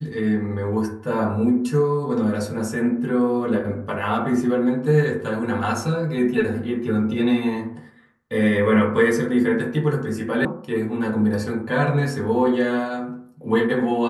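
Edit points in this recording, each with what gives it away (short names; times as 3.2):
10.45 sound cut off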